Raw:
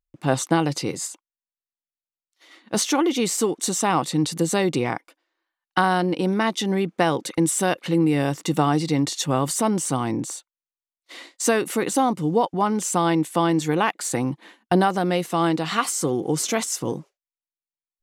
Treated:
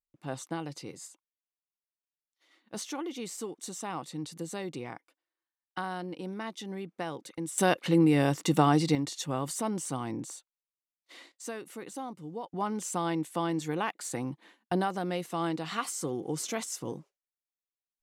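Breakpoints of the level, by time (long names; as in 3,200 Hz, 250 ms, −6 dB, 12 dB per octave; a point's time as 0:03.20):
−16 dB
from 0:07.58 −3 dB
from 0:08.95 −10.5 dB
from 0:11.32 −19 dB
from 0:12.52 −10.5 dB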